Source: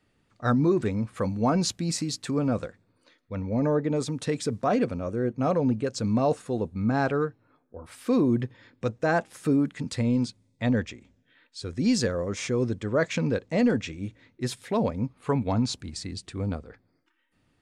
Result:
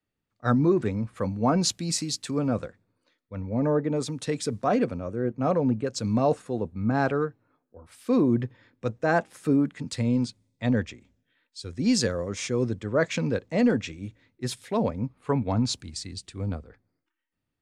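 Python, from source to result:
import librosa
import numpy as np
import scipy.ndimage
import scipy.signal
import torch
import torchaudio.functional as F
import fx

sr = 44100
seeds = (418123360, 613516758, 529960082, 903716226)

y = fx.band_widen(x, sr, depth_pct=40)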